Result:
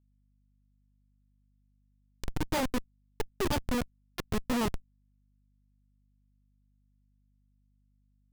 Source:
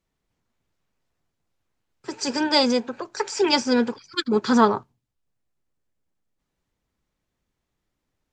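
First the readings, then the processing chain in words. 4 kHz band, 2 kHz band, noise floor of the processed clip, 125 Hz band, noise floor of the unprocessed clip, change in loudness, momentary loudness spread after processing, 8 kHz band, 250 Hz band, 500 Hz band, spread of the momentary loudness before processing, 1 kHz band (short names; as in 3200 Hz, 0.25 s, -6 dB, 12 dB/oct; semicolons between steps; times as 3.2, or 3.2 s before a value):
-16.0 dB, -11.0 dB, -69 dBFS, +2.5 dB, -80 dBFS, -12.0 dB, 12 LU, -9.5 dB, -11.5 dB, -13.5 dB, 12 LU, -13.0 dB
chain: Schmitt trigger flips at -16 dBFS; hum 50 Hz, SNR 32 dB; gain -1 dB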